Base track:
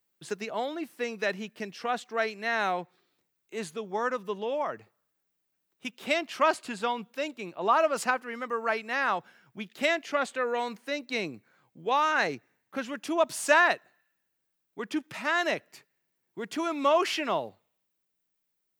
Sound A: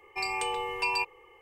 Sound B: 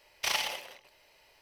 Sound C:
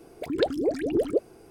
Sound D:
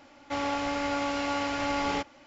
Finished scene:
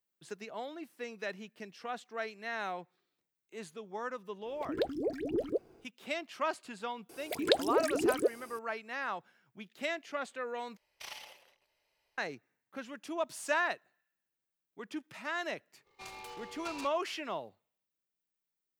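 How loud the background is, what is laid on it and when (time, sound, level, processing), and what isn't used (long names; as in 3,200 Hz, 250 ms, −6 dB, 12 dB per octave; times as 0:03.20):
base track −9.5 dB
0:04.39: mix in C −8.5 dB, fades 0.10 s + running median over 5 samples
0:07.09: mix in C −1 dB + spectral tilt +3 dB per octave
0:10.77: overwrite with B −16 dB
0:15.83: mix in A −15.5 dB, fades 0.05 s + short delay modulated by noise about 1,600 Hz, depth 0.05 ms
not used: D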